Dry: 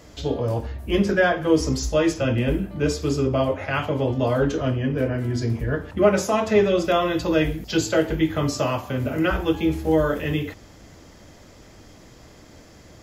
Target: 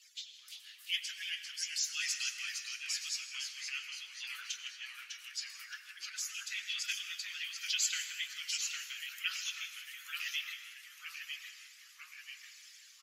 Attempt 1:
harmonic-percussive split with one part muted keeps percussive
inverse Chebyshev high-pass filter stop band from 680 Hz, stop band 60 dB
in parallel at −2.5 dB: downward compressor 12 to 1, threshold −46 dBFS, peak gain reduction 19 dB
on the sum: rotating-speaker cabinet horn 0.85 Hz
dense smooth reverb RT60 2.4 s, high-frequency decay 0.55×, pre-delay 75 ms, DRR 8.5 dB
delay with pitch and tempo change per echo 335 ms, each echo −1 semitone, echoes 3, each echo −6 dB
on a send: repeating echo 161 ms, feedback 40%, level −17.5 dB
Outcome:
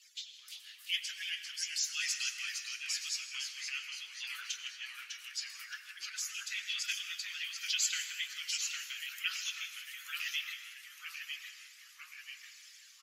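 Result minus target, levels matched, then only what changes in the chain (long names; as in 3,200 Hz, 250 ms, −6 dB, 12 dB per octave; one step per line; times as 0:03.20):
downward compressor: peak gain reduction −8 dB
change: downward compressor 12 to 1, threshold −54.5 dBFS, peak gain reduction 26.5 dB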